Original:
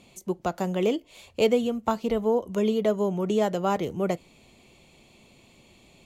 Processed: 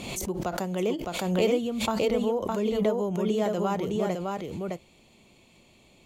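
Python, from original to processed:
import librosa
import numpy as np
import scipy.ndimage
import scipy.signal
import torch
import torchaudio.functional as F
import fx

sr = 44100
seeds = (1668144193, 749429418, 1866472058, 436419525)

p1 = x + fx.echo_single(x, sr, ms=611, db=-3.5, dry=0)
p2 = fx.pre_swell(p1, sr, db_per_s=41.0)
y = F.gain(torch.from_numpy(p2), -4.0).numpy()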